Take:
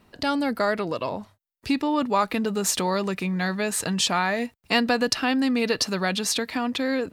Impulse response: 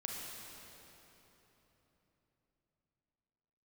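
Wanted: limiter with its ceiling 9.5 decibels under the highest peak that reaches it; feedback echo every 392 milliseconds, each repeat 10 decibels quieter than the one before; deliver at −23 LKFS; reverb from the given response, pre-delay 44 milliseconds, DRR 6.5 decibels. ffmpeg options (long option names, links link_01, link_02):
-filter_complex "[0:a]alimiter=limit=-16.5dB:level=0:latency=1,aecho=1:1:392|784|1176|1568:0.316|0.101|0.0324|0.0104,asplit=2[link_01][link_02];[1:a]atrim=start_sample=2205,adelay=44[link_03];[link_02][link_03]afir=irnorm=-1:irlink=0,volume=-7dB[link_04];[link_01][link_04]amix=inputs=2:normalize=0,volume=2.5dB"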